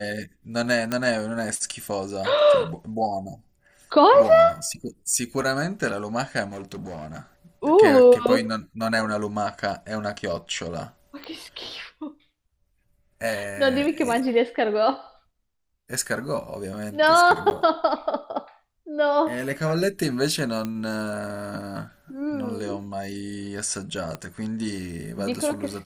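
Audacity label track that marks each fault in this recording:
0.920000	0.920000	pop -11 dBFS
6.490000	7.200000	clipped -31.5 dBFS
11.240000	11.240000	pop -25 dBFS
17.500000	17.510000	gap 9.7 ms
20.650000	20.650000	pop -16 dBFS
24.150000	24.150000	pop -18 dBFS

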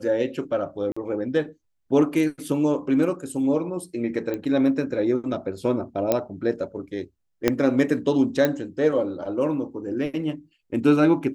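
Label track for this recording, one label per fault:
0.920000	0.960000	gap 45 ms
4.340000	4.340000	pop -17 dBFS
6.120000	6.120000	pop -7 dBFS
7.480000	7.480000	pop -5 dBFS
8.450000	8.450000	pop -8 dBFS

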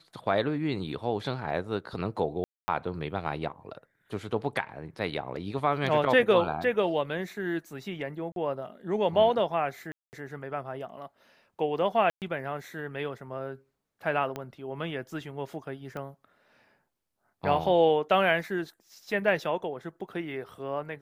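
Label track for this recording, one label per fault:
2.440000	2.680000	gap 0.24 s
8.320000	8.360000	gap 42 ms
9.920000	10.130000	gap 0.209 s
12.100000	12.220000	gap 0.118 s
14.360000	14.360000	pop -20 dBFS
15.970000	15.970000	pop -25 dBFS

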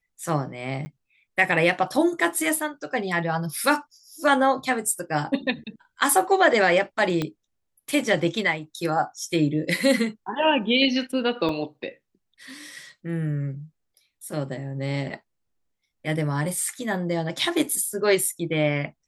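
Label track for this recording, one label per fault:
0.850000	0.860000	gap 10 ms
7.220000	7.220000	pop -13 dBFS
11.490000	11.490000	gap 2.1 ms

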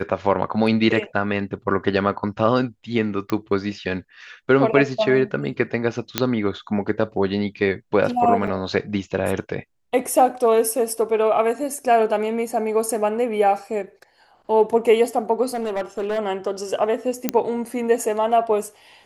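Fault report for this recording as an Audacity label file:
3.300000	3.300000	pop -12 dBFS
6.180000	6.180000	pop -1 dBFS
8.470000	8.470000	gap 5 ms
15.530000	16.190000	clipped -20.5 dBFS
17.290000	17.290000	pop -4 dBFS

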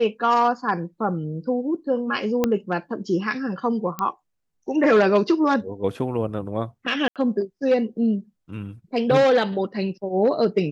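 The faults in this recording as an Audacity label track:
2.440000	2.440000	pop -7 dBFS
3.990000	3.990000	pop -13 dBFS
7.080000	7.160000	gap 77 ms

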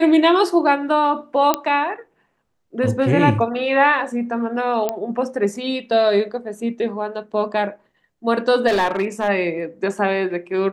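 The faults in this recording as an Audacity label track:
1.540000	1.540000	pop -2 dBFS
4.890000	4.890000	pop -8 dBFS
8.670000	9.290000	clipped -14 dBFS

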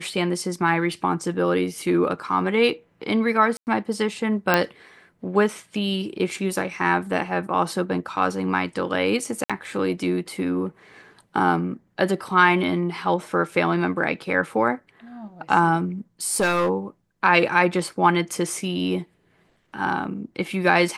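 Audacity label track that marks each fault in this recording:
3.570000	3.670000	gap 99 ms
4.540000	4.540000	pop -4 dBFS
9.440000	9.500000	gap 56 ms
16.270000	16.690000	clipped -16 dBFS

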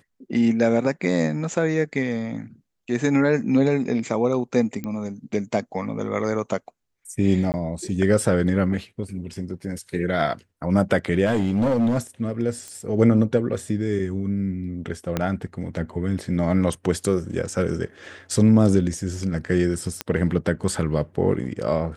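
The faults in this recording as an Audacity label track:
4.840000	4.840000	pop -18 dBFS
7.520000	7.540000	gap 19 ms
11.250000	11.980000	clipped -16.5 dBFS
12.680000	12.680000	pop -23 dBFS
15.170000	15.170000	pop -9 dBFS
20.010000	20.010000	pop -9 dBFS

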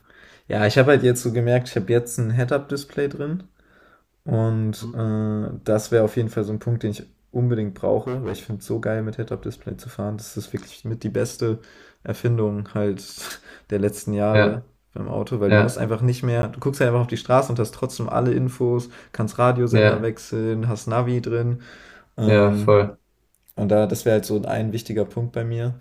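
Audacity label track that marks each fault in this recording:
8.070000	8.540000	clipped -23 dBFS
16.420000	16.430000	gap 11 ms

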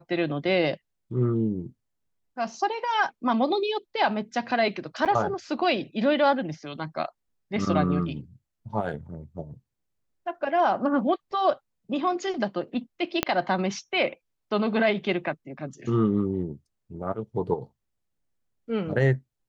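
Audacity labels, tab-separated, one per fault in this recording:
5.050000	5.060000	gap 7.3 ms
13.230000	13.230000	pop -6 dBFS

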